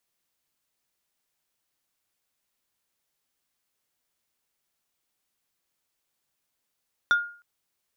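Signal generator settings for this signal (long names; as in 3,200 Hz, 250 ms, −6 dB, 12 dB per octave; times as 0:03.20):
struck wood plate, length 0.31 s, lowest mode 1,420 Hz, decay 0.43 s, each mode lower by 11.5 dB, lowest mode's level −14.5 dB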